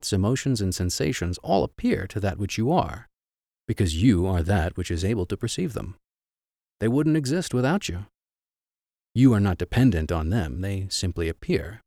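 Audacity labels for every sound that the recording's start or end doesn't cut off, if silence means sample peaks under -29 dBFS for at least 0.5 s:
3.690000	5.900000	sound
6.810000	8.010000	sound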